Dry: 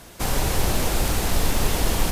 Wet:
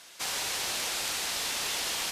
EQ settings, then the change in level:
resonant band-pass 4,200 Hz, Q 0.63
0.0 dB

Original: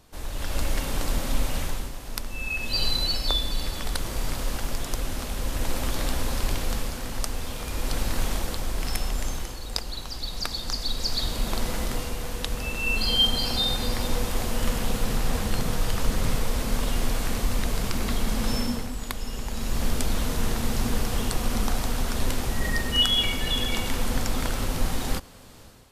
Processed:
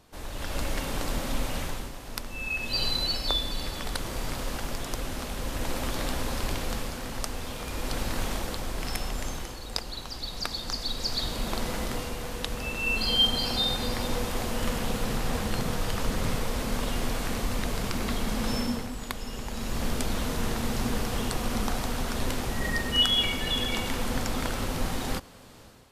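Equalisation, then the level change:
low-shelf EQ 77 Hz −7 dB
high-shelf EQ 4,900 Hz −4.5 dB
0.0 dB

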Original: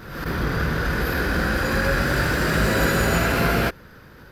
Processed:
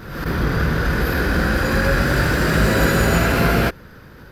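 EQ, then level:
low-shelf EQ 420 Hz +3 dB
+2.0 dB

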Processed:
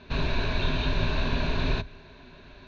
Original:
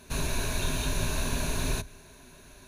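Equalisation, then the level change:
Butterworth low-pass 4,300 Hz 36 dB per octave
+3.5 dB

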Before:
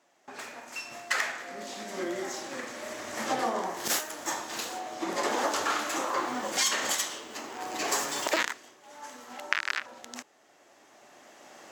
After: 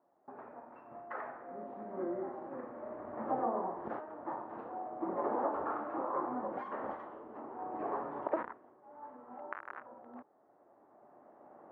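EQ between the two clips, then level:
low-pass filter 1,100 Hz 24 dB per octave
−3.5 dB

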